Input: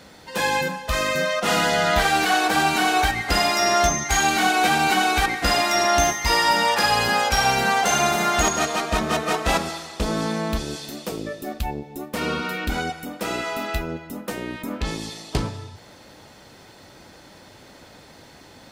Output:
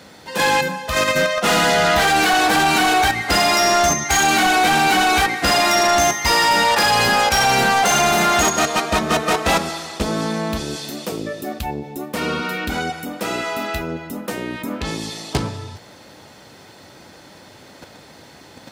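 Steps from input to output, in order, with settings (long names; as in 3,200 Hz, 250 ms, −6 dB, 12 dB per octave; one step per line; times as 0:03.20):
high-pass filter 78 Hz
in parallel at +1.5 dB: output level in coarse steps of 23 dB
on the sum: soft clipping −13.5 dBFS, distortion −12 dB
level +2.5 dB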